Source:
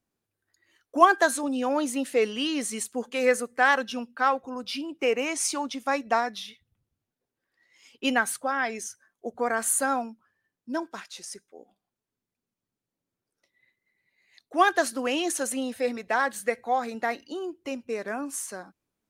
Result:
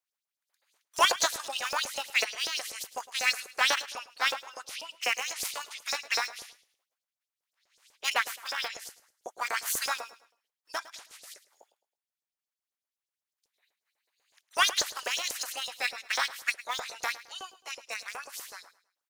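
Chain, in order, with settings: spectral limiter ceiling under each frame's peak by 28 dB; HPF 190 Hz 24 dB/oct; in parallel at -3.5 dB: sample gate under -21.5 dBFS; on the sum: LFO high-pass saw up 8.1 Hz 450–6600 Hz; soft clip -4 dBFS, distortion -18 dB; on a send: feedback echo 0.107 s, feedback 34%, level -17 dB; on the sum: gain -9 dB

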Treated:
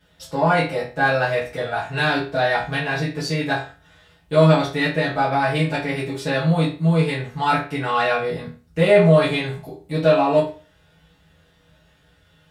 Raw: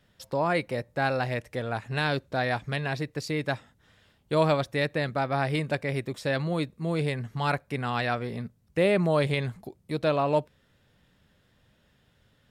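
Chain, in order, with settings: in parallel at -11 dB: soft clip -28.5 dBFS, distortion -8 dB; on the sum: reverb RT60 0.35 s, pre-delay 5 ms, DRR -10 dB; gain -3.5 dB

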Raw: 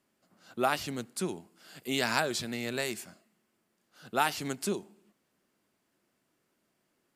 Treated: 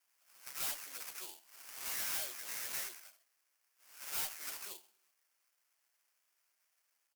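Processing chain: spectral delay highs early, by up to 0.166 s; HPF 560 Hz 12 dB/oct; treble ducked by the level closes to 2500 Hz, closed at -28.5 dBFS; sample-rate reducer 3800 Hz, jitter 20%; differentiator; tube stage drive 36 dB, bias 0.3; gain +8.5 dB

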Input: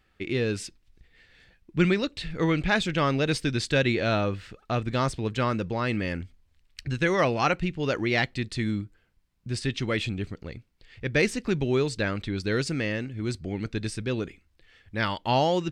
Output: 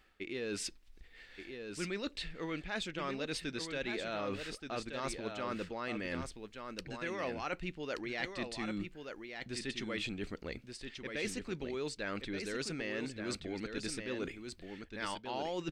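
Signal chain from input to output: bell 110 Hz -15 dB 1.2 oct; reverse; compressor 6:1, threshold -39 dBFS, peak gain reduction 18.5 dB; reverse; echo 1.177 s -6.5 dB; gain +2 dB

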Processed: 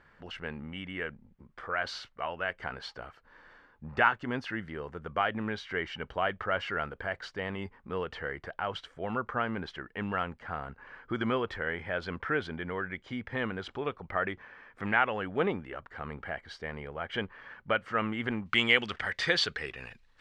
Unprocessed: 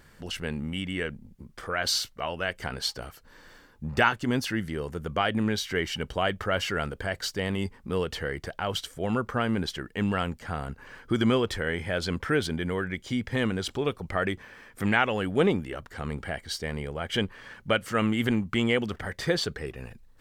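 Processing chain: tilt shelf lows -10 dB, about 930 Hz; LPF 1200 Hz 12 dB/oct, from 18.46 s 3200 Hz

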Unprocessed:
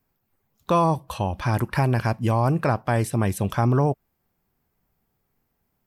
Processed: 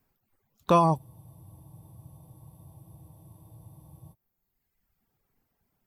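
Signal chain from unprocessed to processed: reverb removal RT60 1.1 s; spectral freeze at 0.99, 3.13 s

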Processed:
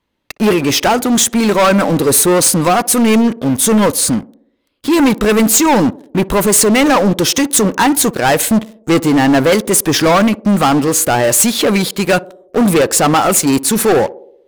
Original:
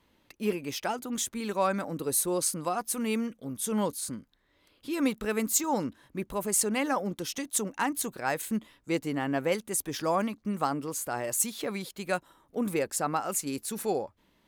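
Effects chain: high shelf 11000 Hz -5.5 dB; sample leveller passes 5; narrowing echo 60 ms, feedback 65%, band-pass 420 Hz, level -18 dB; gain +6.5 dB

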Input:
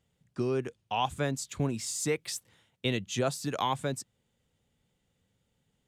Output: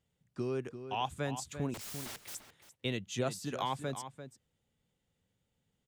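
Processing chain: 1.74–2.35 wrapped overs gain 34 dB; outdoor echo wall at 59 m, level -10 dB; gain -5.5 dB

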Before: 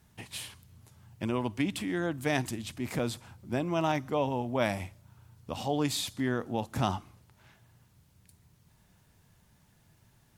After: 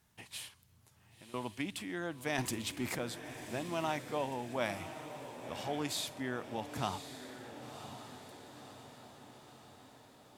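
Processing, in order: low shelf 370 Hz -7.5 dB; 0.48–1.34 compressor, threshold -52 dBFS, peak gain reduction 20 dB; 2.38–2.95 sample leveller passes 2; diffused feedback echo 1.057 s, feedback 57%, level -10 dB; gain -4.5 dB

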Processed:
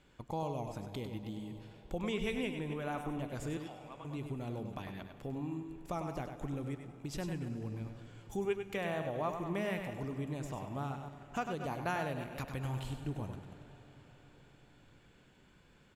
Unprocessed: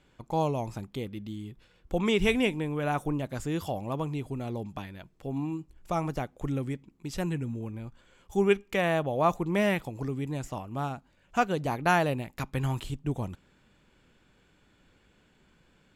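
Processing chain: reverse delay 0.144 s, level -14 dB; compressor 2:1, threshold -40 dBFS, peak gain reduction 12.5 dB; 3.57–4.05 band-pass 2100 Hz, Q 1.1; outdoor echo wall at 17 m, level -7 dB; reverb RT60 5.5 s, pre-delay 55 ms, DRR 13 dB; gain -1.5 dB

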